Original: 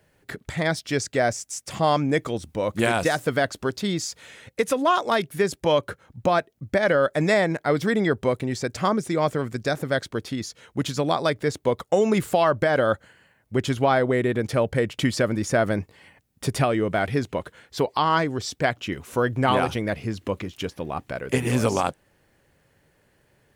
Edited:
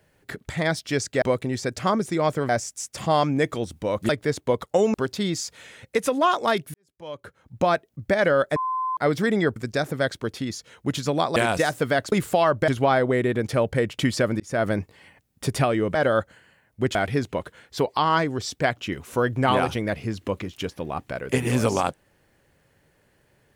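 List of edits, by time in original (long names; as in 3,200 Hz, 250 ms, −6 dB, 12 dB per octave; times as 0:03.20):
0:02.82–0:03.58: swap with 0:11.27–0:12.12
0:05.38–0:06.28: fade in quadratic
0:07.20–0:07.61: beep over 1,030 Hz −23 dBFS
0:08.20–0:09.47: move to 0:01.22
0:12.68–0:13.68: move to 0:16.95
0:15.40–0:15.66: fade in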